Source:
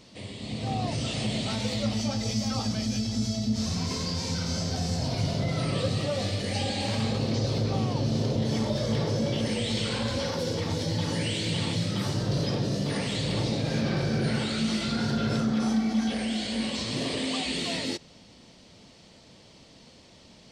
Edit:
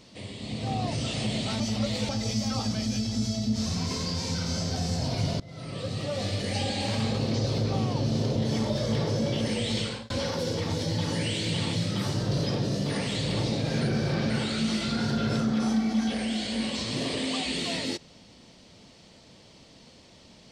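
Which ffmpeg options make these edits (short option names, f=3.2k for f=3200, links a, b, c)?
-filter_complex "[0:a]asplit=7[a][b][c][d][e][f][g];[a]atrim=end=1.602[h];[b]atrim=start=1.598:end=2.092,asetpts=PTS-STARTPTS,areverse[i];[c]atrim=start=2.088:end=5.4,asetpts=PTS-STARTPTS,afade=t=out:st=3.308:d=0.004:c=hsin:silence=0.0707946[j];[d]atrim=start=5.4:end=10.1,asetpts=PTS-STARTPTS,afade=t=in:d=0.96:silence=0.0707946,afade=t=out:st=4.4:d=0.3[k];[e]atrim=start=10.1:end=13.812,asetpts=PTS-STARTPTS,afade=t=in:d=0.004:c=hsin[l];[f]atrim=start=13.808:end=14.302,asetpts=PTS-STARTPTS,areverse[m];[g]atrim=start=14.298[n];[h][i]acrossfade=d=0.004:c1=hsin:c2=hsin[o];[j][k][l]concat=n=3:v=0:a=1[p];[o][p]acrossfade=d=0.004:c1=hsin:c2=hsin[q];[q][m]acrossfade=d=0.004:c1=hsin:c2=hsin[r];[r][n]acrossfade=d=0.004:c1=hsin:c2=hsin"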